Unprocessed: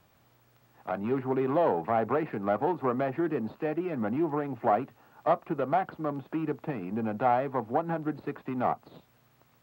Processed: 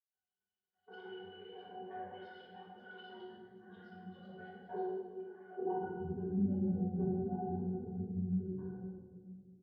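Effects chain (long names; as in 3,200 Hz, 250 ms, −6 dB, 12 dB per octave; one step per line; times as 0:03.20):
fade-out on the ending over 3.16 s
downward expander −52 dBFS
bass and treble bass +5 dB, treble +12 dB
comb filter 2.7 ms, depth 56%
dynamic equaliser 150 Hz, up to −5 dB, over −41 dBFS, Q 1.2
output level in coarse steps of 11 dB
band-pass filter sweep 2,400 Hz → 220 Hz, 0:05.12–0:05.79
granular cloud, pitch spread up and down by 12 semitones
resonances in every octave F#, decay 0.16 s
convolution reverb RT60 1.9 s, pre-delay 3 ms, DRR −11 dB
level +3.5 dB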